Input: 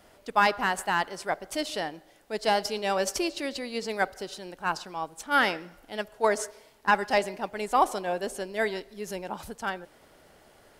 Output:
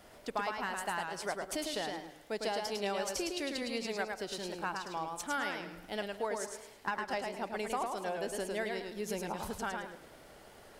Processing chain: compression 6:1, threshold -34 dBFS, peak gain reduction 16.5 dB; modulated delay 107 ms, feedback 30%, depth 96 cents, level -4 dB

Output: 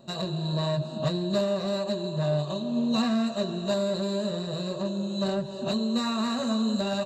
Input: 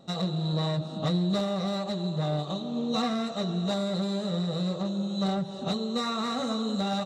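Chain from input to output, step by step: rippled EQ curve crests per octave 1.4, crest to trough 11 dB

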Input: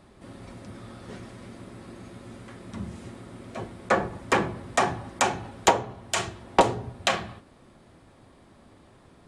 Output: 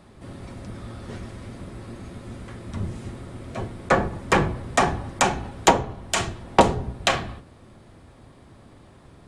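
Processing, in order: octave divider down 1 oct, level +1 dB; trim +3 dB

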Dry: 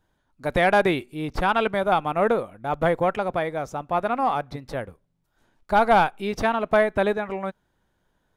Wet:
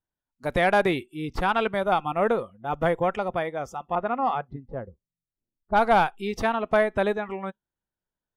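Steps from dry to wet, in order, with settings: spectral noise reduction 20 dB; 3.95–5.95 s: level-controlled noise filter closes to 350 Hz, open at -14.5 dBFS; trim -2 dB

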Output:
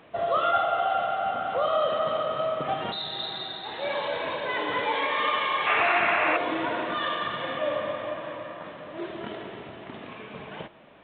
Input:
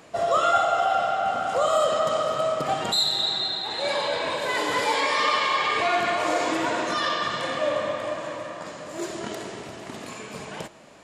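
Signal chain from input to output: painted sound noise, 5.66–6.37 s, 580–2800 Hz -22 dBFS; trim -3 dB; A-law 64 kbps 8 kHz

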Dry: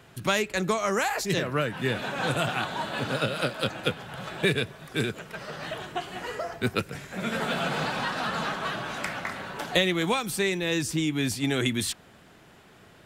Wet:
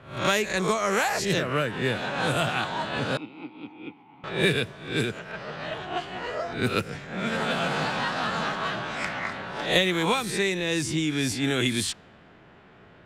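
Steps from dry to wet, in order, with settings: reverse spectral sustain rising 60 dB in 0.48 s; 3.17–4.24 s: vowel filter u; level-controlled noise filter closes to 2.5 kHz, open at -20 dBFS

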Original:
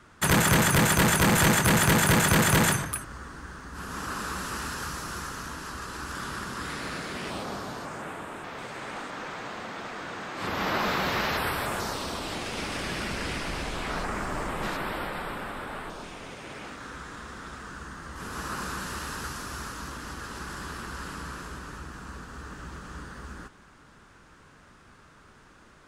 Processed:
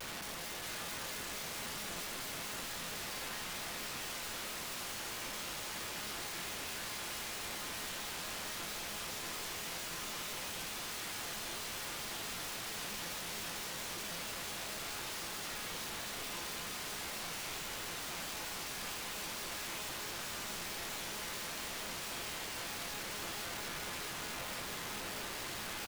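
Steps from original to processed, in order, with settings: spectral levelling over time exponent 0.2; low-pass 3.8 kHz 12 dB/octave; resonant low shelf 110 Hz +7 dB, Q 1.5; peak limiter -10 dBFS, peak gain reduction 5.5 dB; integer overflow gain 21 dB; feedback comb 190 Hz, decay 1.4 s, mix 80%; delay 635 ms -5 dB; vibrato with a chosen wave square 4.5 Hz, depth 160 cents; trim -5 dB

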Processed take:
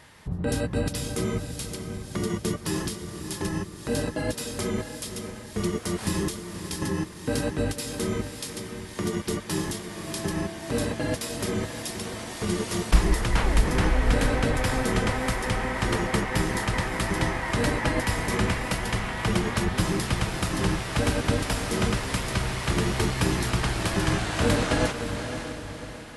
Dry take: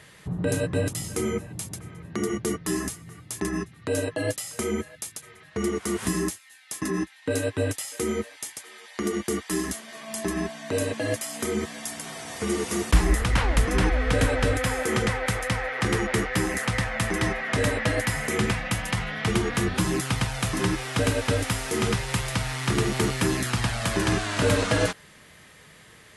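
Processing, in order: echo that smears into a reverb 568 ms, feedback 46%, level -8 dB; harmony voices -12 st -2 dB; trim -3 dB

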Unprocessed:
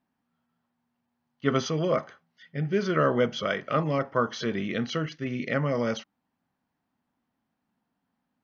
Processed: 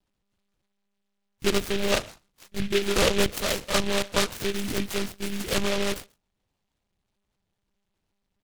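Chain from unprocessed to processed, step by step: speakerphone echo 130 ms, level -24 dB; monotone LPC vocoder at 8 kHz 200 Hz; delay time shaken by noise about 2.5 kHz, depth 0.18 ms; trim +1.5 dB

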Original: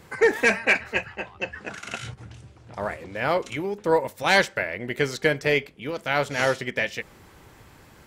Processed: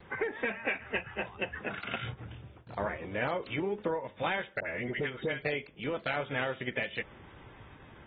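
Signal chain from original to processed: gate with hold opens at -41 dBFS; compression 16:1, threshold -27 dBFS, peak gain reduction 15 dB; 4.60–5.45 s: phase dispersion highs, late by 78 ms, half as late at 1.2 kHz; trim -2.5 dB; AAC 16 kbps 32 kHz

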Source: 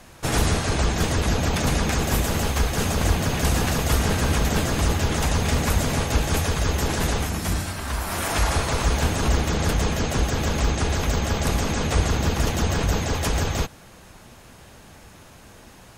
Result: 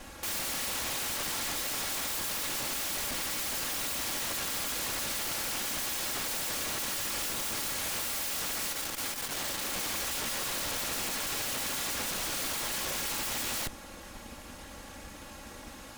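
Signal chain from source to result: comb filter that takes the minimum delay 3.6 ms; peak limiter -21.5 dBFS, peak gain reduction 11.5 dB; integer overflow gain 31.5 dB; 8.72–9.73 s: transformer saturation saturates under 180 Hz; trim +2.5 dB

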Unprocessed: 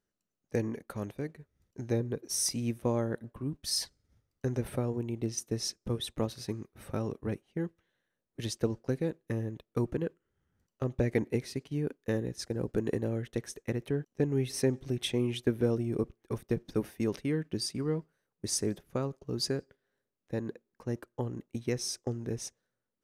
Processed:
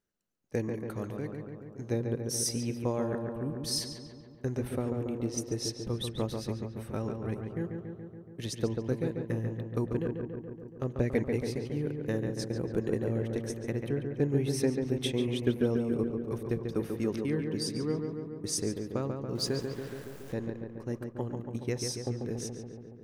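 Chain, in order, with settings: 19.35–20.34 s: jump at every zero crossing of -43 dBFS; on a send: filtered feedback delay 141 ms, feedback 72%, low-pass 2.7 kHz, level -5 dB; on the sum: trim -1 dB

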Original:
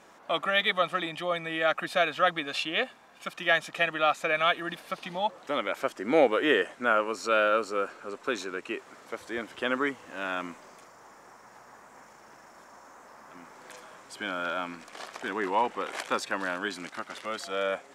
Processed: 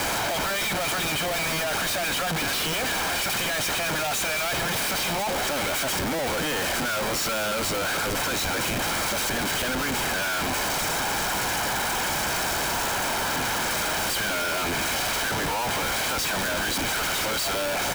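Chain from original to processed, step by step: zero-crossing glitches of -23 dBFS; comb 1.3 ms, depth 97%; Schmitt trigger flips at -32.5 dBFS

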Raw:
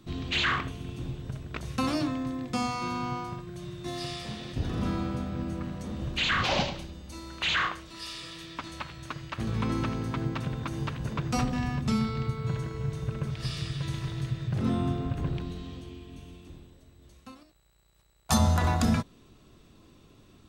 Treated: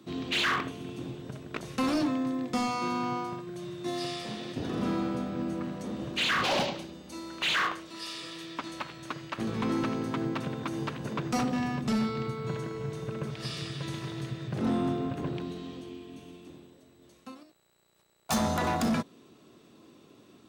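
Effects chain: high-pass 290 Hz 12 dB/octave; bass shelf 450 Hz +9 dB; hard clipper -23.5 dBFS, distortion -14 dB

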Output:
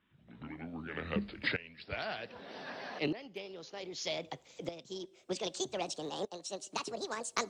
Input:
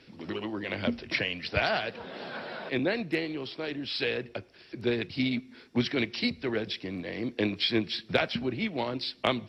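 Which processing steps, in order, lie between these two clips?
gliding tape speed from 66% -> 187%; tremolo saw up 0.64 Hz, depth 85%; trim -3.5 dB

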